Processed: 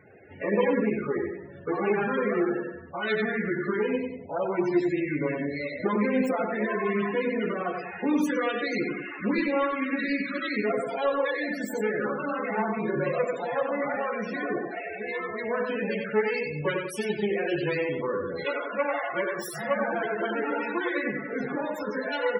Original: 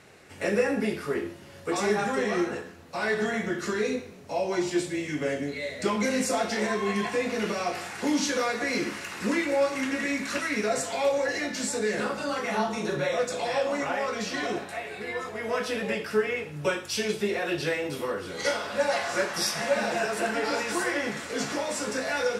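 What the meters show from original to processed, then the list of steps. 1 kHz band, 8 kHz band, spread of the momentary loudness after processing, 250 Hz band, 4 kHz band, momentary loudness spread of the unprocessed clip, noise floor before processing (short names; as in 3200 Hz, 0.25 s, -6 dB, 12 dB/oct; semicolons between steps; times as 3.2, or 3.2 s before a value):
-0.5 dB, -15.0 dB, 6 LU, +2.0 dB, -8.0 dB, 6 LU, -45 dBFS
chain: self-modulated delay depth 0.34 ms; dynamic EQ 660 Hz, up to -4 dB, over -40 dBFS, Q 2.8; feedback echo 93 ms, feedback 44%, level -4.5 dB; loudest bins only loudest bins 32; gain +1.5 dB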